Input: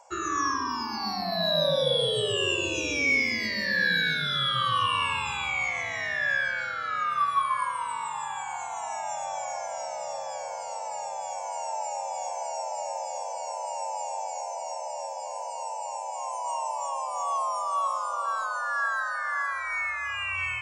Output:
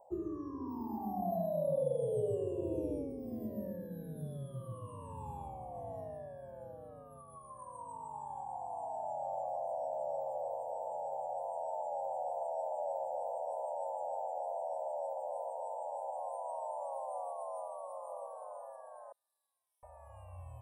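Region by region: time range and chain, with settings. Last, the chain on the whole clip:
19.12–19.83 hard clip -30 dBFS + ladder band-pass 4400 Hz, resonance 70%
whole clip: compressor, threshold -28 dBFS; inverse Chebyshev band-stop 1300–6900 Hz, stop band 40 dB

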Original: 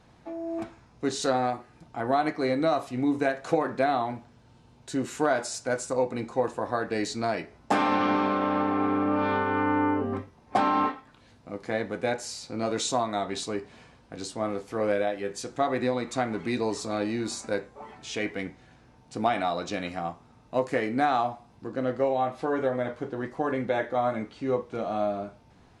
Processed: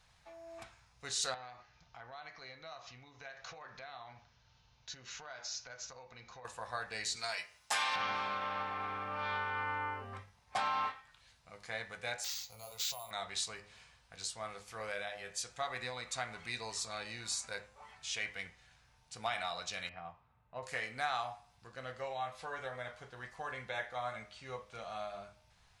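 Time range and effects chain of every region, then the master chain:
1.34–6.45 steep low-pass 6600 Hz 96 dB/oct + compressor 3:1, threshold -36 dBFS
7.16–7.96 tilt +3 dB/oct + notch comb 190 Hz
12.24–13.11 compressor, threshold -28 dBFS + fixed phaser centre 700 Hz, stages 4 + careless resampling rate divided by 4×, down none, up hold
19.89–20.63 low-pass opened by the level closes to 2300 Hz, open at -26.5 dBFS + HPF 58 Hz + tape spacing loss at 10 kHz 36 dB
whole clip: passive tone stack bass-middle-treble 10-0-10; de-hum 103.2 Hz, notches 31

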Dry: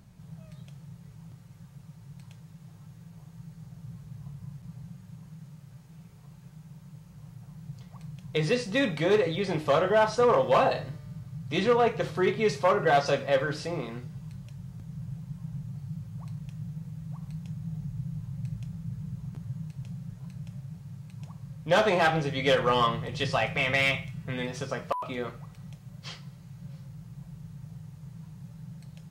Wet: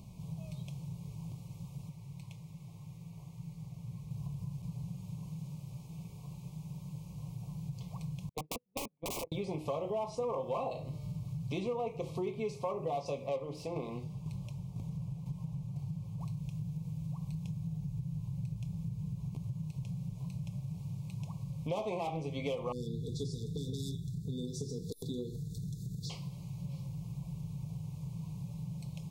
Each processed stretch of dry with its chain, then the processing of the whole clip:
1.89–4.11 bell 1800 Hz +10.5 dB 0.54 oct + flange 1.8 Hz, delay 4.7 ms, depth 6 ms, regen -70%
8.29–9.32 gate -24 dBFS, range -49 dB + LPF 1200 Hz + wrapped overs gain 29 dB
13.26–16.21 self-modulated delay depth 0.099 ms + bell 760 Hz +4.5 dB 2.8 oct + tremolo saw down 2 Hz, depth 55%
22.72–26.1 brick-wall FIR band-stop 490–3400 Hz + bell 7400 Hz +3.5 dB 0.29 oct + upward compressor, threshold -36 dBFS
whole clip: Chebyshev band-stop 1100–2300 Hz, order 3; dynamic EQ 3800 Hz, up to -7 dB, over -49 dBFS, Q 0.91; compressor 4:1, threshold -40 dBFS; gain +4 dB

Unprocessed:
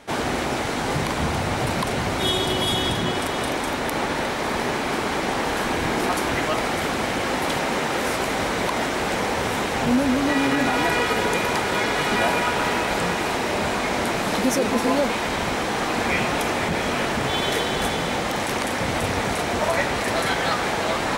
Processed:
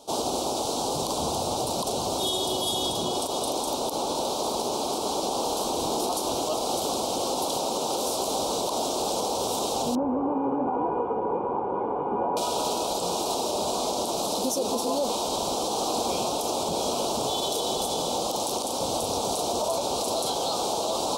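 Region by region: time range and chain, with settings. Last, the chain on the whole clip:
9.95–12.37 steep low-pass 2000 Hz 48 dB/oct + notch comb 650 Hz
whole clip: Chebyshev band-stop 870–3900 Hz, order 2; tone controls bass -11 dB, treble +5 dB; limiter -17.5 dBFS

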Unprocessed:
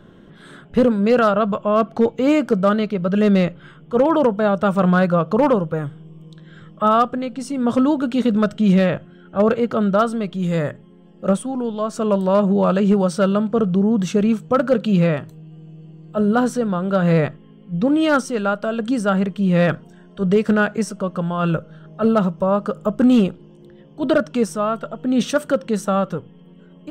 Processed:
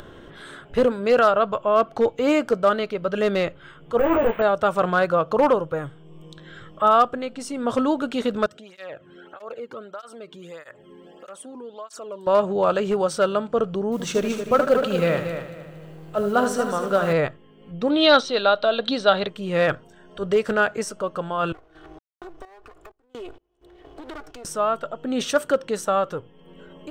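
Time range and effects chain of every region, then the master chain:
3.99–4.42 delta modulation 16 kbps, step -30 dBFS + doubler 18 ms -4 dB + careless resampling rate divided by 2×, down filtered, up hold
8.46–12.27 compressor 2:1, threshold -36 dBFS + tape flanging out of phase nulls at 1.6 Hz, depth 1.6 ms
13.92–17.13 G.711 law mismatch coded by mu + multi-head echo 77 ms, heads first and third, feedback 44%, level -9 dB
17.9–19.28 synth low-pass 3900 Hz, resonance Q 13 + bell 650 Hz +5 dB 0.74 oct
21.52–24.45 minimum comb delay 2.7 ms + compressor 16:1, threshold -29 dBFS + random-step tremolo 4.3 Hz, depth 100%
whole clip: bell 190 Hz -14 dB 0.92 oct; upward compressor, threshold -35 dBFS

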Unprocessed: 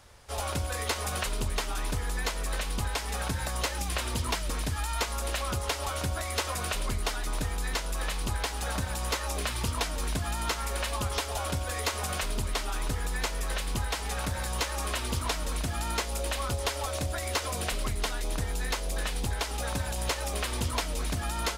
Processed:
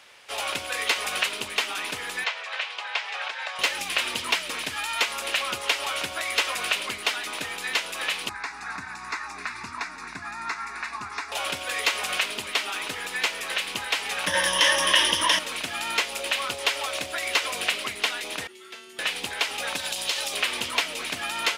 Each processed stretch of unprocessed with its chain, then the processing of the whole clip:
2.24–3.59 HPF 570 Hz 24 dB/oct + air absorption 150 m
8.29–11.32 air absorption 100 m + fixed phaser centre 1300 Hz, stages 4
14.27–15.39 ripple EQ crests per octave 1.2, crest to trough 13 dB + fast leveller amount 100%
18.47–18.99 resonator 220 Hz, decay 0.96 s, mix 90% + frequency shift -420 Hz
19.76–20.37 resonant high shelf 2900 Hz +6 dB, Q 1.5 + compressor 4:1, threshold -28 dBFS
whole clip: HPF 280 Hz 12 dB/oct; bell 2600 Hz +13 dB 1.4 oct

